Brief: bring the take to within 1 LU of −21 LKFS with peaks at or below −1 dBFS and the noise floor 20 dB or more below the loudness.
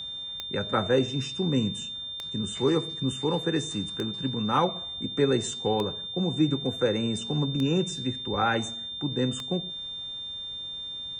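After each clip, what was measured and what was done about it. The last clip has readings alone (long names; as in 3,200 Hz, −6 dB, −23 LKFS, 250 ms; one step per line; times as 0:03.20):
number of clicks 6; interfering tone 3,600 Hz; level of the tone −34 dBFS; integrated loudness −28.0 LKFS; sample peak −11.0 dBFS; target loudness −21.0 LKFS
→ click removal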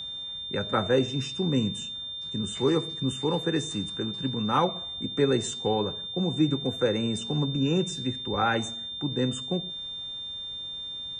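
number of clicks 0; interfering tone 3,600 Hz; level of the tone −34 dBFS
→ notch filter 3,600 Hz, Q 30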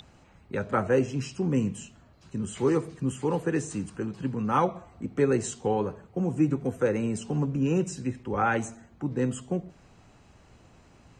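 interfering tone none found; integrated loudness −28.5 LKFS; sample peak −10.5 dBFS; target loudness −21.0 LKFS
→ level +7.5 dB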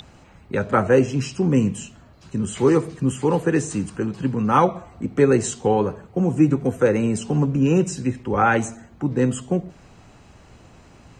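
integrated loudness −21.0 LKFS; sample peak −3.0 dBFS; background noise floor −50 dBFS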